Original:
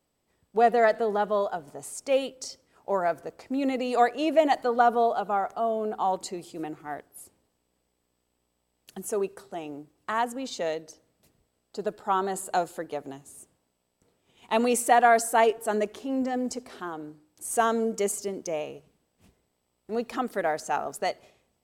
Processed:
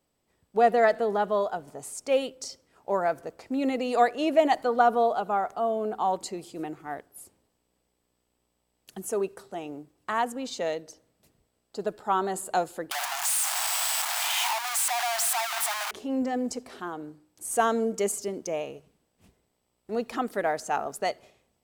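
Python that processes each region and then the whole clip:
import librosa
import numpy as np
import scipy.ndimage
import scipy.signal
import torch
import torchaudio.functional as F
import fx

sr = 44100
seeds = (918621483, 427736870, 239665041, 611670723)

y = fx.chain(x, sr, fx.clip_1bit(),
    fx.steep_highpass(hz=700.0, slope=72), at=(12.91, 15.91))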